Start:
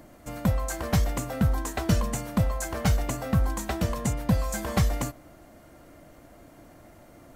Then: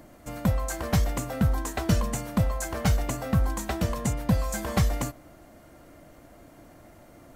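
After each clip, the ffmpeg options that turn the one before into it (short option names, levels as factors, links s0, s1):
-af anull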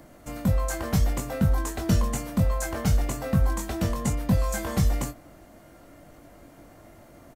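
-filter_complex "[0:a]acrossover=split=440|4800[s0][s1][s2];[s1]alimiter=level_in=1.12:limit=0.0631:level=0:latency=1:release=162,volume=0.891[s3];[s0][s3][s2]amix=inputs=3:normalize=0,asplit=2[s4][s5];[s5]adelay=21,volume=0.501[s6];[s4][s6]amix=inputs=2:normalize=0"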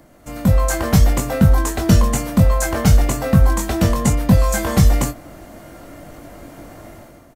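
-af "dynaudnorm=f=110:g=7:m=3.55,volume=1.12"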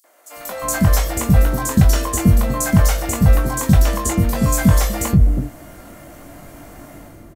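-filter_complex "[0:a]highshelf=f=4600:g=4.5,acrossover=split=460|4500[s0][s1][s2];[s1]adelay=40[s3];[s0]adelay=360[s4];[s4][s3][s2]amix=inputs=3:normalize=0"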